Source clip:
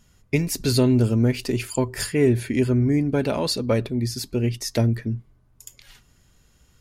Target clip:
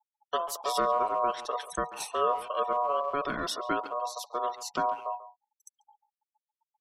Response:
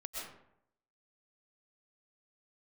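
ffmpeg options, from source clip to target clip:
-filter_complex "[0:a]aeval=exprs='val(0)*sin(2*PI*850*n/s)':c=same,afftfilt=real='re*gte(hypot(re,im),0.0126)':imag='im*gte(hypot(re,im),0.0126)':win_size=1024:overlap=0.75,asplit=2[s0][s1];[s1]adelay=140,highpass=300,lowpass=3400,asoftclip=type=hard:threshold=0.141,volume=0.2[s2];[s0][s2]amix=inputs=2:normalize=0,volume=0.501"

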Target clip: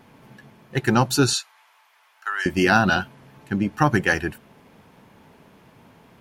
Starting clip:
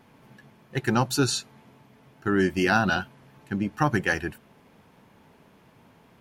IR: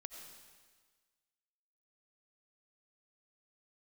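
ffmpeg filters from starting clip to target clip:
-filter_complex "[0:a]asettb=1/sr,asplit=3[s0][s1][s2];[s0]atrim=end=1.334[s3];[s1]atrim=start=1.33:end=2.46,asetpts=PTS-STARTPTS,afade=t=in:d=0.004:c=qsin,afade=t=out:st=1.126:d=0.004:c=qsin,highpass=f=920:w=0.5412,highpass=f=920:w=1.3066[s4];[s2]atrim=start=2.456[s5];[s3][s4]acrossfade=d=0.004:c1=hsin:c2=qsin[s6];[s6][s5]acrossfade=d=0.004:c1=qsin:c2=hsin,volume=1.68"

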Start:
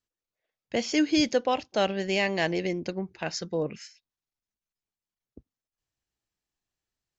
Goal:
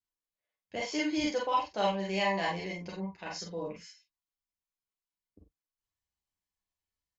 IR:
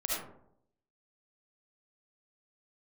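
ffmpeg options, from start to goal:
-filter_complex "[0:a]asettb=1/sr,asplit=3[s0][s1][s2];[s0]atrim=end=0.764[s3];[s1]atrim=start=0.76:end=3.19,asetpts=PTS-STARTPTS,afade=t=in:d=0.004:c=qsin,afade=t=out:st=2.426:d=0.004:c=qsin,equalizer=f=950:w=1.6:g=7[s4];[s2]atrim=start=3.186[s5];[s3][s4]acrossfade=d=0.004:c1=hsin:c2=qsin[s6];[s6][s5]acrossfade=d=0.004:c1=qsin:c2=hsin,aecho=1:1:10|46:0.631|0.376[s7];[1:a]atrim=start_sample=2205,atrim=end_sample=3969,asetrate=70560,aresample=44100[s8];[s7][s8]afir=irnorm=-1:irlink=0,volume=0.447"

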